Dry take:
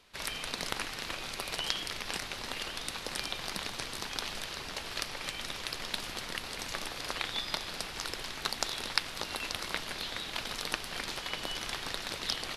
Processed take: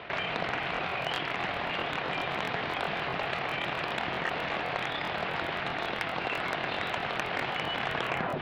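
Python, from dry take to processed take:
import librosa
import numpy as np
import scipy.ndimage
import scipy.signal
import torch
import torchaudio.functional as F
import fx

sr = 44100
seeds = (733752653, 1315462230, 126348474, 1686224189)

p1 = fx.tape_stop_end(x, sr, length_s=0.71)
p2 = fx.echo_diffused(p1, sr, ms=657, feedback_pct=57, wet_db=-14.5)
p3 = fx.rider(p2, sr, range_db=10, speed_s=0.5)
p4 = p2 + (p3 * librosa.db_to_amplitude(2.0))
p5 = fx.cabinet(p4, sr, low_hz=110.0, low_slope=12, high_hz=2700.0, hz=(150.0, 240.0, 710.0), db=(4, -4, 7))
p6 = 10.0 ** (-19.0 / 20.0) * np.tanh(p5 / 10.0 ** (-19.0 / 20.0))
p7 = fx.stretch_grains(p6, sr, factor=0.67, grain_ms=56.0)
p8 = fx.buffer_crackle(p7, sr, first_s=0.61, period_s=0.13, block=1024, kind='repeat')
y = fx.env_flatten(p8, sr, amount_pct=50)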